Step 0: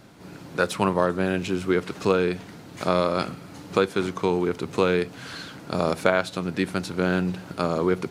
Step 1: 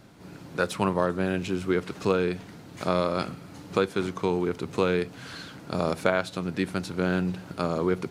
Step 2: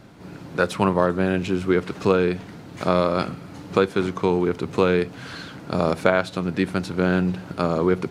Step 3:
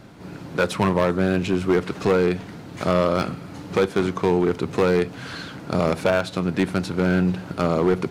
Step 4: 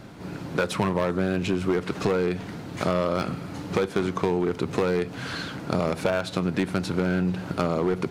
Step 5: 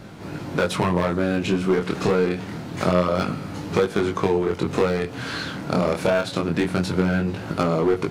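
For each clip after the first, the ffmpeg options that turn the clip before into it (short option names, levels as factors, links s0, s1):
-af "lowshelf=f=170:g=3.5,volume=0.668"
-af "highshelf=f=4700:g=-6.5,volume=1.88"
-af "volume=5.31,asoftclip=hard,volume=0.188,volume=1.26"
-af "acompressor=threshold=0.0794:ratio=6,volume=1.19"
-af "flanger=delay=19:depth=7.9:speed=0.26,volume=2.11"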